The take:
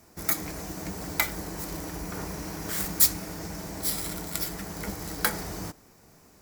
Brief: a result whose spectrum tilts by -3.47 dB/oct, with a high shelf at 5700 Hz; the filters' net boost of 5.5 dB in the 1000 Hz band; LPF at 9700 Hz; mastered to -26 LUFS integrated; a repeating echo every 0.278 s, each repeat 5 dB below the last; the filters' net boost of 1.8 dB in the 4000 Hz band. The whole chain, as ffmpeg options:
-af "lowpass=9.7k,equalizer=f=1k:t=o:g=7,equalizer=f=4k:t=o:g=3.5,highshelf=f=5.7k:g=-3,aecho=1:1:278|556|834|1112|1390|1668|1946:0.562|0.315|0.176|0.0988|0.0553|0.031|0.0173,volume=4.5dB"

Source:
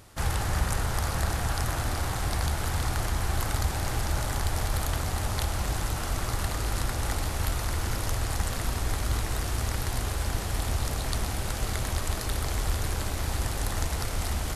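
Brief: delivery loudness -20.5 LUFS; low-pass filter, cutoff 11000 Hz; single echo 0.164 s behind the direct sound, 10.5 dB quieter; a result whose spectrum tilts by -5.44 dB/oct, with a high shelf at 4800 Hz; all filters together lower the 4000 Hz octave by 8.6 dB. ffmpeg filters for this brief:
-af "lowpass=11k,equalizer=f=4k:t=o:g=-7.5,highshelf=f=4.8k:g=-7,aecho=1:1:164:0.299,volume=10.5dB"

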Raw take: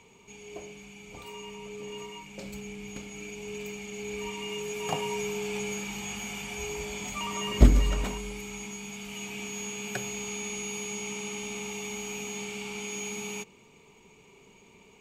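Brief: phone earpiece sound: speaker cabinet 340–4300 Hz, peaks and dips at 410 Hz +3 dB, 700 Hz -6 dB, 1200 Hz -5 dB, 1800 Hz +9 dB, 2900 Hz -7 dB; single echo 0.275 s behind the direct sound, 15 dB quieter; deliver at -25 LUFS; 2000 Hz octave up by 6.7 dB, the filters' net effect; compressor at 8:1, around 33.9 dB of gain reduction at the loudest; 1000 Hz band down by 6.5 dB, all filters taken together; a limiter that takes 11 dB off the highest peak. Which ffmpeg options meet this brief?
-af "equalizer=f=1k:t=o:g=-6.5,equalizer=f=2k:t=o:g=8.5,acompressor=threshold=-47dB:ratio=8,alimiter=level_in=20.5dB:limit=-24dB:level=0:latency=1,volume=-20.5dB,highpass=340,equalizer=f=410:t=q:w=4:g=3,equalizer=f=700:t=q:w=4:g=-6,equalizer=f=1.2k:t=q:w=4:g=-5,equalizer=f=1.8k:t=q:w=4:g=9,equalizer=f=2.9k:t=q:w=4:g=-7,lowpass=f=4.3k:w=0.5412,lowpass=f=4.3k:w=1.3066,aecho=1:1:275:0.178,volume=28dB"

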